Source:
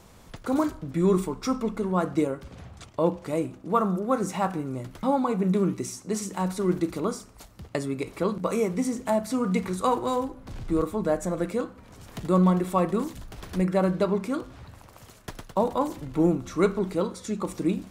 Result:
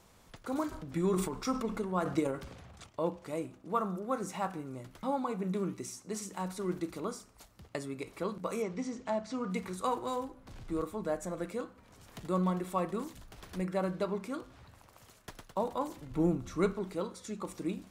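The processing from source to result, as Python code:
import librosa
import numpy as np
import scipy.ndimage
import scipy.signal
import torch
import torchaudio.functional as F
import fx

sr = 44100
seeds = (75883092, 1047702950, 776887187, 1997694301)

y = fx.transient(x, sr, attack_db=5, sustain_db=9, at=(0.71, 2.86), fade=0.02)
y = fx.lowpass(y, sr, hz=6300.0, slope=24, at=(8.62, 9.5))
y = fx.low_shelf(y, sr, hz=190.0, db=10.0, at=(16.1, 16.73))
y = fx.low_shelf(y, sr, hz=470.0, db=-4.5)
y = y * 10.0 ** (-7.0 / 20.0)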